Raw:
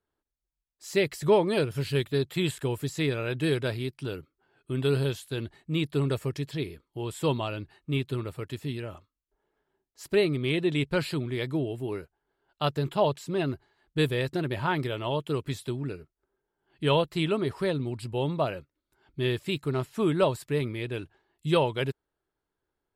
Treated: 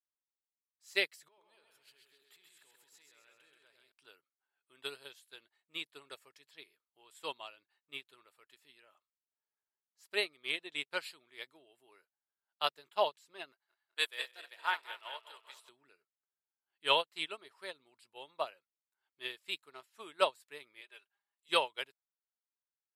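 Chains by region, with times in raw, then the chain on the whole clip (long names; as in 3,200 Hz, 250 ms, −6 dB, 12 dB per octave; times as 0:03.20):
0:01.28–0:03.92: downward compressor 16 to 1, threshold −38 dBFS + echo with a time of its own for lows and highs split 680 Hz, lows 96 ms, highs 131 ms, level −3 dB
0:13.52–0:15.69: feedback delay that plays each chunk backwards 100 ms, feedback 76%, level −7.5 dB + high-pass filter 670 Hz
0:20.81–0:21.49: high-pass filter 540 Hz + comb filter 5 ms, depth 53%
whole clip: high-pass filter 970 Hz 12 dB per octave; dynamic equaliser 1,300 Hz, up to −3 dB, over −42 dBFS, Q 0.86; expander for the loud parts 2.5 to 1, over −44 dBFS; level +5.5 dB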